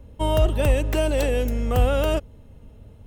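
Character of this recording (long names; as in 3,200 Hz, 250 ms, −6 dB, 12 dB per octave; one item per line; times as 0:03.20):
background noise floor −47 dBFS
spectral slope −6.0 dB per octave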